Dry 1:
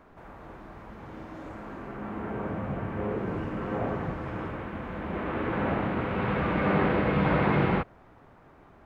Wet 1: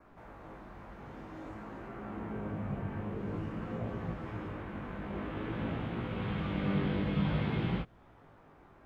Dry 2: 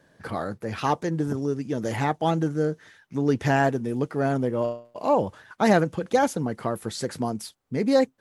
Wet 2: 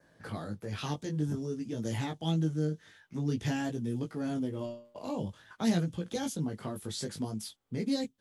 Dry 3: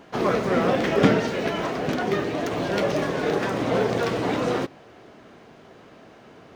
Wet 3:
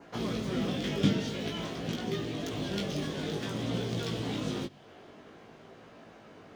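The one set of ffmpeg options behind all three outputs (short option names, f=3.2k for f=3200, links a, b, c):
-filter_complex "[0:a]adynamicequalizer=threshold=0.00178:dfrequency=3300:dqfactor=4.8:tfrequency=3300:tqfactor=4.8:attack=5:release=100:ratio=0.375:range=3.5:mode=boostabove:tftype=bell,acrossover=split=280|3000[a][b][c];[b]acompressor=threshold=-40dB:ratio=3[d];[a][d][c]amix=inputs=3:normalize=0,flanger=delay=17.5:depth=2.9:speed=0.51,volume=-1dB"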